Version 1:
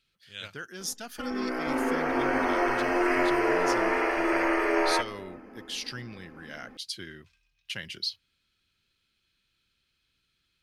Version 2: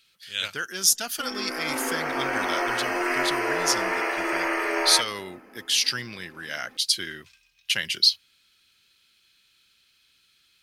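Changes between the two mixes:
speech +8.0 dB; master: add tilt +2.5 dB/oct

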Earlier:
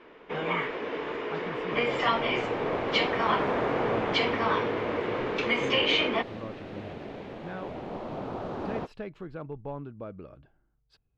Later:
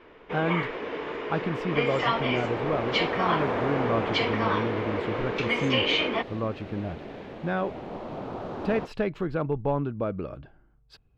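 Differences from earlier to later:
speech +11.0 dB; master: remove brick-wall FIR low-pass 13000 Hz

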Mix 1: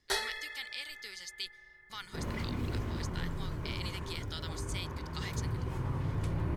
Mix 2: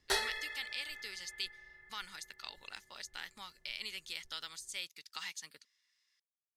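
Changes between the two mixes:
second sound: muted; master: remove notch 2700 Hz, Q 14

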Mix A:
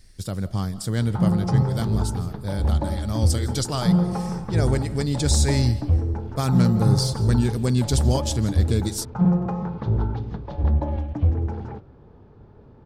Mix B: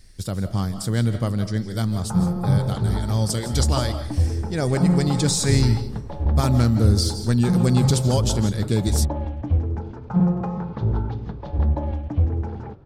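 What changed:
speech: send +8.0 dB; background: entry +0.95 s

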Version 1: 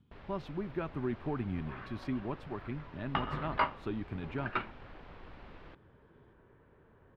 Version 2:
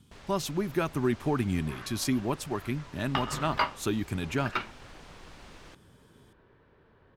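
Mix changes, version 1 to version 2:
speech +7.0 dB; master: remove air absorption 400 m

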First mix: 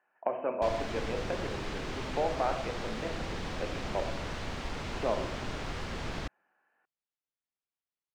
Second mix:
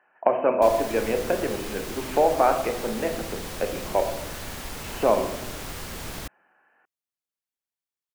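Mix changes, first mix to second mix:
speech +11.0 dB; background: remove air absorption 140 m

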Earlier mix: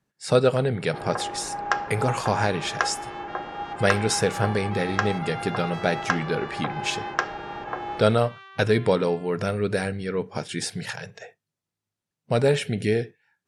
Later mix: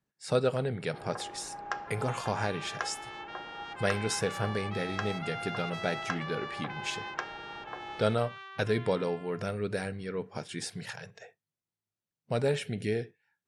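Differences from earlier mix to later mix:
speech -8.0 dB; first sound -11.0 dB

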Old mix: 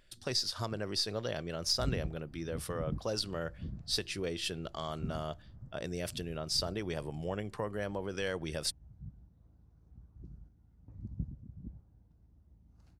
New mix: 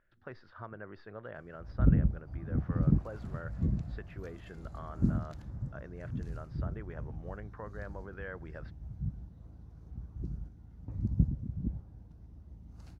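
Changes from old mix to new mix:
speech: add ladder low-pass 1800 Hz, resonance 50%; background +11.5 dB

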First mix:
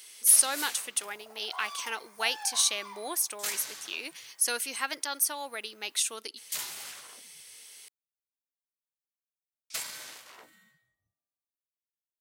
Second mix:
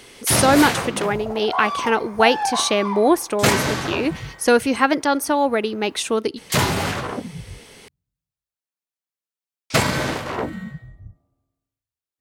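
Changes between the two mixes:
first sound +9.0 dB; second sound: send on; master: remove differentiator

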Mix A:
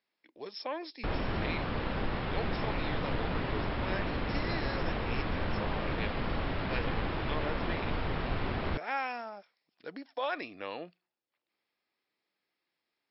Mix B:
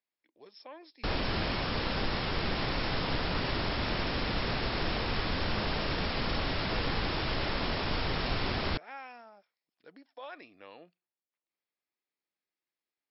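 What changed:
speech -11.0 dB; background: remove air absorption 380 m

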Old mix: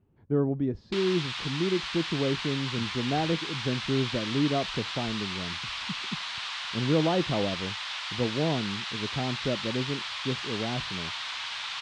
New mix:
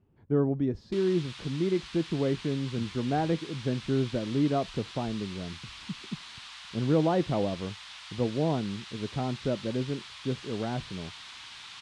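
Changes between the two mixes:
background -12.0 dB; master: remove air absorption 78 m

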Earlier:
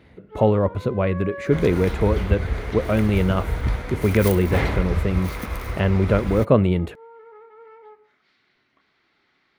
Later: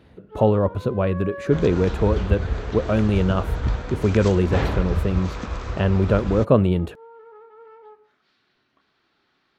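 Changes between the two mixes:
second sound: add brick-wall FIR low-pass 8100 Hz; master: add bell 2100 Hz -10.5 dB 0.24 oct

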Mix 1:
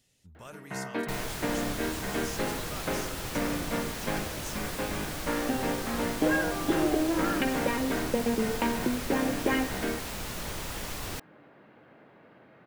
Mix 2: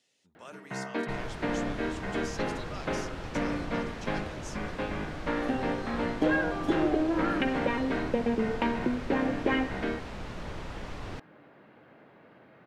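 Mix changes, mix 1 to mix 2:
speech: add BPF 330–6600 Hz; second sound: add tape spacing loss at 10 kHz 25 dB

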